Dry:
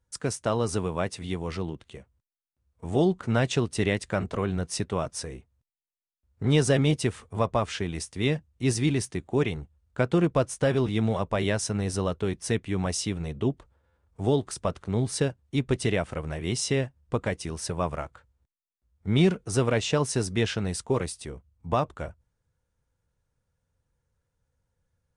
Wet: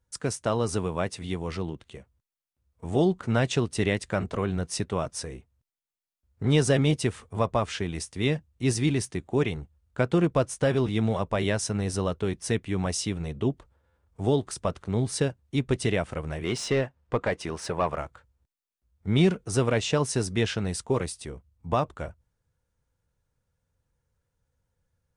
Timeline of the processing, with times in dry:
0:16.44–0:17.98: mid-hump overdrive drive 15 dB, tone 1,500 Hz, clips at −13 dBFS

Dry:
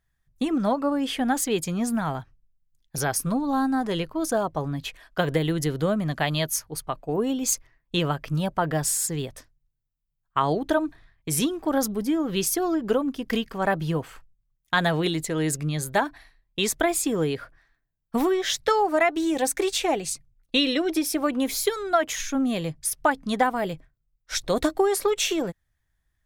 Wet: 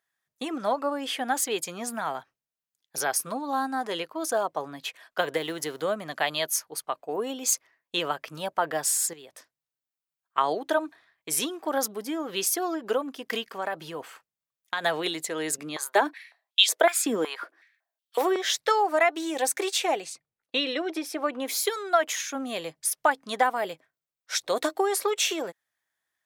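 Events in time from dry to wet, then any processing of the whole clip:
0:05.36–0:05.82: mu-law and A-law mismatch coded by A
0:09.13–0:10.38: downward compressor 2.5 to 1, threshold −42 dBFS
0:13.46–0:14.84: downward compressor, threshold −24 dBFS
0:15.58–0:18.36: high-pass on a step sequencer 5.4 Hz 220–3,300 Hz
0:20.04–0:21.48: low-pass filter 2,500 Hz 6 dB per octave
whole clip: high-pass filter 470 Hz 12 dB per octave

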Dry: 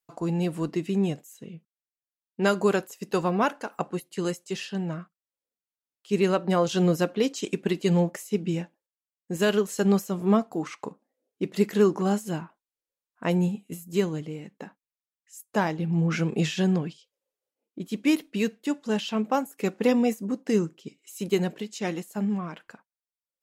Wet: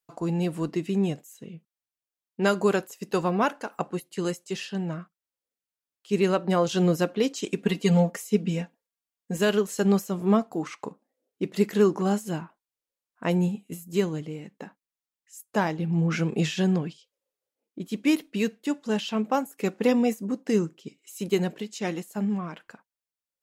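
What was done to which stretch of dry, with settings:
0:07.58–0:09.39: comb filter 4.3 ms, depth 79%

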